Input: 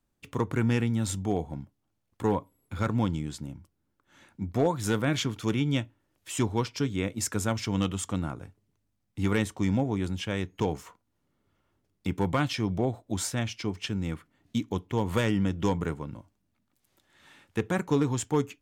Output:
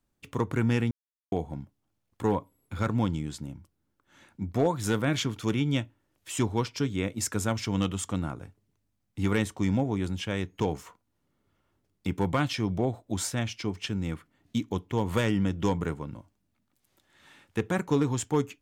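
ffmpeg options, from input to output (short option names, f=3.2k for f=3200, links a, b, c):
-filter_complex "[0:a]asplit=3[a][b][c];[a]atrim=end=0.91,asetpts=PTS-STARTPTS,afade=t=out:st=0.906:d=0.004:c=hsin[d];[b]atrim=start=0.91:end=1.32,asetpts=PTS-STARTPTS,volume=0[e];[c]atrim=start=1.32,asetpts=PTS-STARTPTS,afade=t=in:d=0.004:c=hsin[f];[d][e][f]concat=n=3:v=0:a=1"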